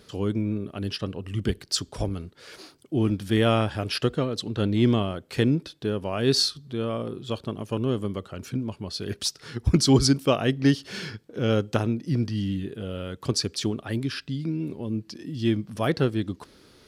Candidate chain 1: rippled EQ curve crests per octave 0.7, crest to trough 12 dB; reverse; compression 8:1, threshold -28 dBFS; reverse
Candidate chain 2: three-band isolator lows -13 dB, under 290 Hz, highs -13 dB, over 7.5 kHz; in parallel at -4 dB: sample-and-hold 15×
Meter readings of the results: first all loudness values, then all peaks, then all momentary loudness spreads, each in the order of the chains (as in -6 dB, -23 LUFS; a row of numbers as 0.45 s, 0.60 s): -33.5 LUFS, -27.0 LUFS; -14.5 dBFS, -4.5 dBFS; 4 LU, 13 LU